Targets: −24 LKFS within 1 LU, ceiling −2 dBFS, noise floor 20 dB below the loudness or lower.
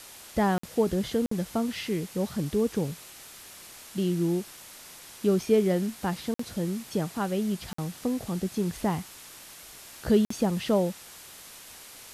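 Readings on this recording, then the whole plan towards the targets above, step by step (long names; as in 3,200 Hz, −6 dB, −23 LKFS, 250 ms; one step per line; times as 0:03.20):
number of dropouts 5; longest dropout 54 ms; background noise floor −47 dBFS; target noise floor −49 dBFS; integrated loudness −28.5 LKFS; sample peak −11.0 dBFS; target loudness −24.0 LKFS
→ repair the gap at 0:00.58/0:01.26/0:06.34/0:07.73/0:10.25, 54 ms
broadband denoise 6 dB, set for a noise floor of −47 dBFS
level +4.5 dB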